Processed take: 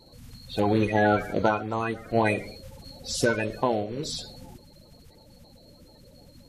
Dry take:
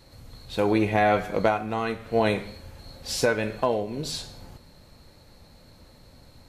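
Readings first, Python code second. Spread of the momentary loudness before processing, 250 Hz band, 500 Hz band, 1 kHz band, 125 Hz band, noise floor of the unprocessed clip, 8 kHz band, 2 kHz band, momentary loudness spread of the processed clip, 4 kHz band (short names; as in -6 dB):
18 LU, +0.5 dB, -1.5 dB, -1.0 dB, +1.5 dB, -54 dBFS, 0.0 dB, 0.0 dB, 18 LU, -1.5 dB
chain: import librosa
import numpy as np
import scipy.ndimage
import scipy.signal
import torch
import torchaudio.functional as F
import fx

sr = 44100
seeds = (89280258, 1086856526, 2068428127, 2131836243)

y = fx.spec_quant(x, sr, step_db=30)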